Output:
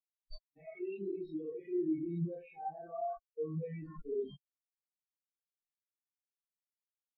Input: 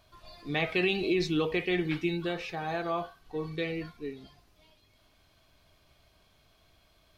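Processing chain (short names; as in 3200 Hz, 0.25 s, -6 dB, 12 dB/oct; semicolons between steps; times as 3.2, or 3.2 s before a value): reverse; compressor 16:1, threshold -40 dBFS, peak gain reduction 17.5 dB; reverse; transient shaper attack -10 dB, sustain +8 dB; Schroeder reverb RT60 0.4 s, combs from 28 ms, DRR -3 dB; level quantiser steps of 23 dB; spectral expander 4:1; gain +9 dB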